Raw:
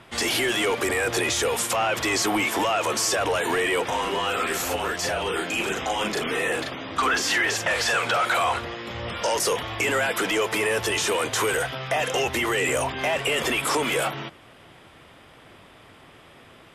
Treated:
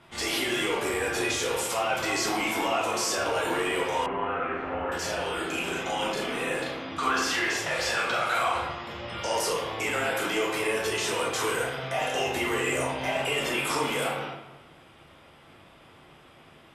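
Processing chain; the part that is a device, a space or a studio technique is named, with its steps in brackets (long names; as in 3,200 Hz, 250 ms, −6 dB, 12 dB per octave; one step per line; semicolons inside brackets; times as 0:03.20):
bathroom (convolution reverb RT60 1.1 s, pre-delay 7 ms, DRR −3.5 dB)
0:04.06–0:04.92: low-pass filter 2,100 Hz 24 dB per octave
notch filter 1,800 Hz, Q 23
level −8.5 dB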